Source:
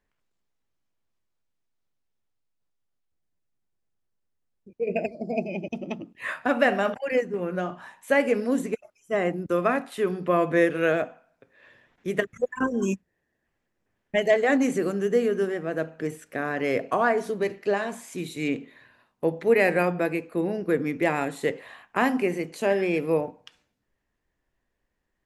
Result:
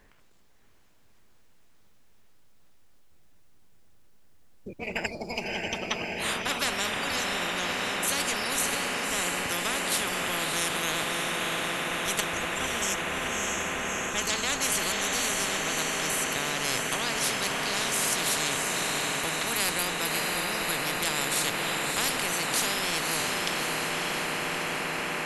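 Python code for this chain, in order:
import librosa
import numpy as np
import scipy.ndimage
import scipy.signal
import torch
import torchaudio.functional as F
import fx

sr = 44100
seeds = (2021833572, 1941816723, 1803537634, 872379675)

y = fx.echo_diffused(x, sr, ms=616, feedback_pct=71, wet_db=-6.0)
y = fx.spectral_comp(y, sr, ratio=10.0)
y = y * librosa.db_to_amplitude(-4.0)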